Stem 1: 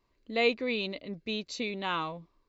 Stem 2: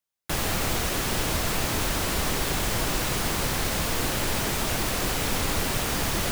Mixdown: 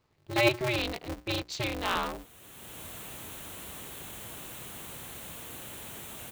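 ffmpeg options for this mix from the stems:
ffmpeg -i stem1.wav -i stem2.wav -filter_complex "[0:a]bandreject=frequency=60:width_type=h:width=6,bandreject=frequency=120:width_type=h:width=6,bandreject=frequency=180:width_type=h:width=6,bandreject=frequency=240:width_type=h:width=6,aeval=exprs='val(0)*sgn(sin(2*PI*120*n/s))':channel_layout=same,volume=2dB,asplit=2[link_01][link_02];[1:a]highpass=68,aexciter=amount=1.1:drive=4.8:freq=2700,adelay=1500,volume=-18.5dB[link_03];[link_02]apad=whole_len=344804[link_04];[link_03][link_04]sidechaincompress=threshold=-42dB:ratio=12:attack=6.7:release=656[link_05];[link_01][link_05]amix=inputs=2:normalize=0" out.wav

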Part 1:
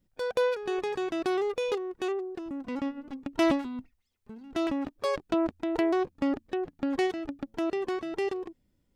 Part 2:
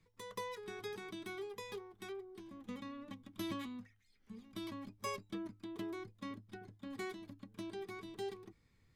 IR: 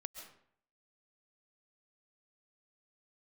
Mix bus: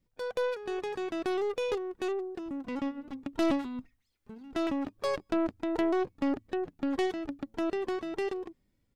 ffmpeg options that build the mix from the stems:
-filter_complex "[0:a]volume=-3.5dB[link_01];[1:a]asplit=2[link_02][link_03];[link_03]adelay=2.9,afreqshift=2.1[link_04];[link_02][link_04]amix=inputs=2:normalize=1,adelay=0.4,volume=-9.5dB,asplit=2[link_05][link_06];[link_06]volume=-19dB[link_07];[2:a]atrim=start_sample=2205[link_08];[link_07][link_08]afir=irnorm=-1:irlink=0[link_09];[link_01][link_05][link_09]amix=inputs=3:normalize=0,dynaudnorm=framelen=470:gausssize=5:maxgain=3.5dB,aeval=exprs='(tanh(10*val(0)+0.3)-tanh(0.3))/10':channel_layout=same"

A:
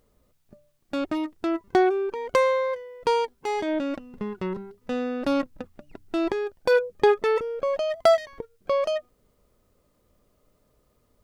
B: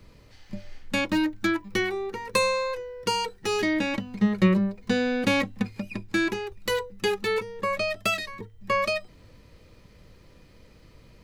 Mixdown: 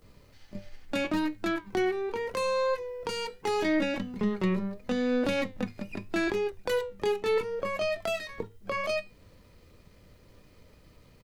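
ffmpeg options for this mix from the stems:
ffmpeg -i stem1.wav -i stem2.wav -filter_complex "[0:a]acrossover=split=270[link_01][link_02];[link_02]acompressor=threshold=-31dB:ratio=3[link_03];[link_01][link_03]amix=inputs=2:normalize=0,volume=-5dB[link_04];[1:a]aeval=exprs='if(lt(val(0),0),0.708*val(0),val(0))':channel_layout=same,flanger=delay=10:depth=2.4:regen=78:speed=0.78:shape=sinusoidal,adelay=18,volume=-5dB[link_05];[link_04][link_05]amix=inputs=2:normalize=0,acontrast=66,alimiter=limit=-18.5dB:level=0:latency=1:release=333" out.wav

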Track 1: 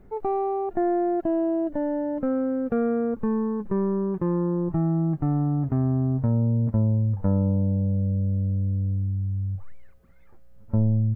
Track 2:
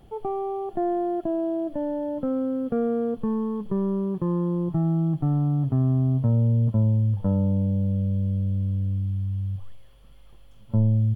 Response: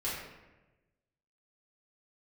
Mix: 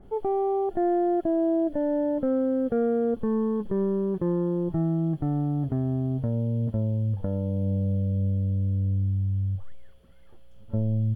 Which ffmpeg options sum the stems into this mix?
-filter_complex "[0:a]lowpass=1400,alimiter=limit=-20.5dB:level=0:latency=1:release=236,volume=1dB[link_01];[1:a]highpass=450,bandreject=frequency=1100:width=12,adynamicequalizer=threshold=0.00355:dfrequency=1600:dqfactor=0.7:tfrequency=1600:tqfactor=0.7:attack=5:release=100:ratio=0.375:range=2:mode=boostabove:tftype=highshelf,volume=-6dB[link_02];[link_01][link_02]amix=inputs=2:normalize=0"

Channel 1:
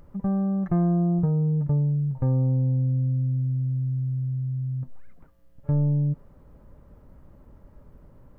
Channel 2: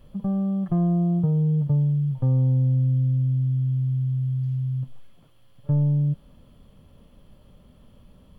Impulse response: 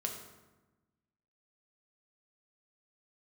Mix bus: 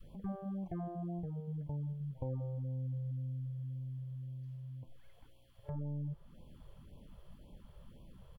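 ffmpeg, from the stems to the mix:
-filter_complex "[0:a]aecho=1:1:5.9:0.34,alimiter=limit=-18.5dB:level=0:latency=1:release=412,volume=-9dB[link_01];[1:a]acompressor=threshold=-36dB:ratio=2.5,volume=-1,volume=-5.5dB[link_02];[link_01][link_02]amix=inputs=2:normalize=0,adynamicequalizer=threshold=0.00251:dfrequency=430:dqfactor=0.99:tfrequency=430:tqfactor=0.99:attack=5:release=100:ratio=0.375:range=3:mode=cutabove:tftype=bell,afftfilt=real='re*(1-between(b*sr/1024,220*pow(1600/220,0.5+0.5*sin(2*PI*1.9*pts/sr))/1.41,220*pow(1600/220,0.5+0.5*sin(2*PI*1.9*pts/sr))*1.41))':imag='im*(1-between(b*sr/1024,220*pow(1600/220,0.5+0.5*sin(2*PI*1.9*pts/sr))/1.41,220*pow(1600/220,0.5+0.5*sin(2*PI*1.9*pts/sr))*1.41))':win_size=1024:overlap=0.75"

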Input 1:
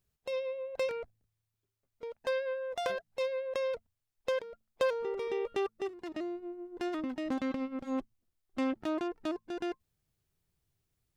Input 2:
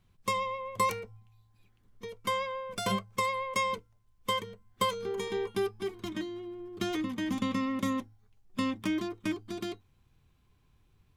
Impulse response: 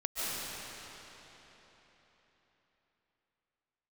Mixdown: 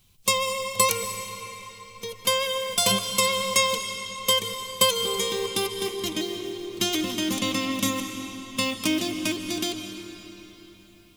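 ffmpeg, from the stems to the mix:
-filter_complex "[0:a]acrusher=bits=7:mode=log:mix=0:aa=0.000001,volume=-4dB[link_01];[1:a]volume=1.5dB,asplit=2[link_02][link_03];[link_03]volume=-11dB[link_04];[2:a]atrim=start_sample=2205[link_05];[link_04][link_05]afir=irnorm=-1:irlink=0[link_06];[link_01][link_02][link_06]amix=inputs=3:normalize=0,aexciter=amount=2.8:drive=8.2:freq=2500"

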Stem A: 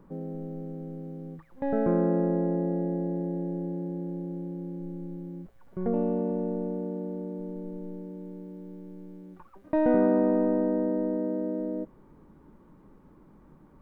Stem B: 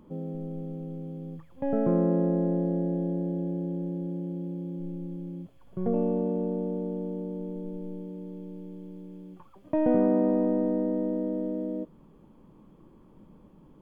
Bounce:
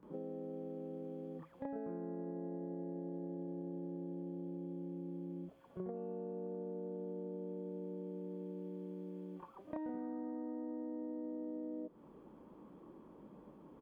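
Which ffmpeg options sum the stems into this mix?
ffmpeg -i stem1.wav -i stem2.wav -filter_complex "[0:a]highpass=40,volume=-11.5dB[link_01];[1:a]highpass=300,highshelf=frequency=2000:gain=-11,acompressor=threshold=-33dB:ratio=6,adelay=29,volume=3dB[link_02];[link_01][link_02]amix=inputs=2:normalize=0,acompressor=threshold=-41dB:ratio=6" out.wav

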